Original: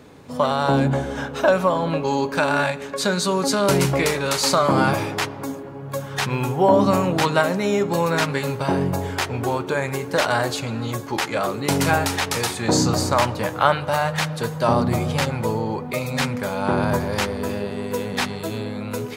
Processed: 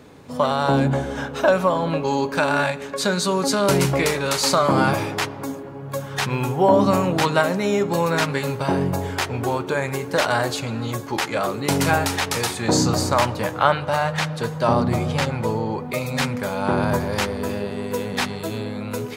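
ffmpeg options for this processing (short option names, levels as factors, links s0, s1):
-filter_complex "[0:a]asettb=1/sr,asplit=3[s0][s1][s2];[s0]atrim=end=13.514[s3];[s1]atrim=start=13.51:end=15.79,asetpts=PTS-STARTPTS,afade=t=in:d=0.004:c=qsin,afade=t=out:st=2.276:d=0.004:c=qsin,highshelf=f=10000:g=-9[s4];[s2]atrim=start=15.786[s5];[s3][s4]acrossfade=d=0.004:c1=hsin:c2=qsin[s6];[s6][s5]acrossfade=d=0.004:c1=qsin:c2=hsin"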